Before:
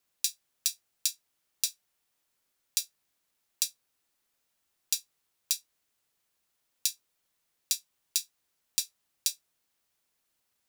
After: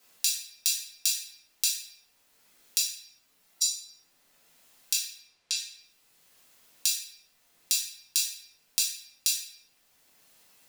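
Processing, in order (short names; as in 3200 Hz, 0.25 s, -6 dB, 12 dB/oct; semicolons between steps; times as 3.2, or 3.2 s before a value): 2.78–3.67 spectral contrast raised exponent 2.2; 4.93–5.56 air absorption 91 m; shoebox room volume 180 m³, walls mixed, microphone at 2 m; three-band squash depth 40%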